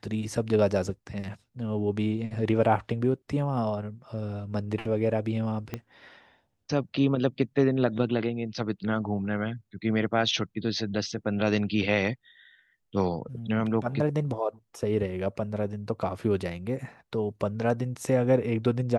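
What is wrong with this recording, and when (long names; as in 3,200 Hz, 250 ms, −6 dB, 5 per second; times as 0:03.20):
0:05.74: click −18 dBFS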